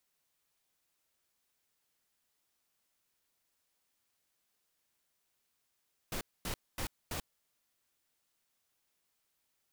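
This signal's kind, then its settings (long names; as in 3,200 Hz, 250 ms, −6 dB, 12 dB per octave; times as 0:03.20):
noise bursts pink, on 0.09 s, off 0.24 s, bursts 4, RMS −37.5 dBFS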